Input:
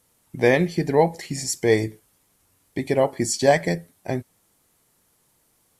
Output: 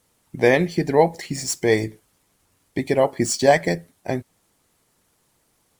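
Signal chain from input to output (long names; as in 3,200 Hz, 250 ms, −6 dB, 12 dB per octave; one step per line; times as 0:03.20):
running median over 3 samples
harmonic and percussive parts rebalanced percussive +4 dB
level −1 dB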